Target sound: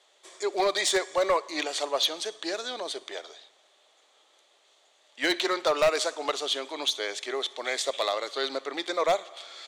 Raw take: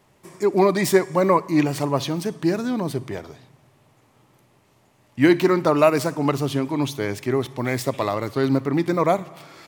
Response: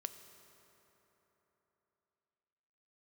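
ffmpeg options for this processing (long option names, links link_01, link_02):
-af "highpass=frequency=490:width=0.5412,highpass=frequency=490:width=1.3066,equalizer=frequency=960:width_type=q:width=4:gain=-7,equalizer=frequency=3400:width_type=q:width=4:gain=9,equalizer=frequency=5200:width_type=q:width=4:gain=-8,lowpass=frequency=6800:width=0.5412,lowpass=frequency=6800:width=1.3066,aexciter=amount=3.1:drive=4.9:freq=3700,volume=15.5dB,asoftclip=hard,volume=-15.5dB,volume=-2dB"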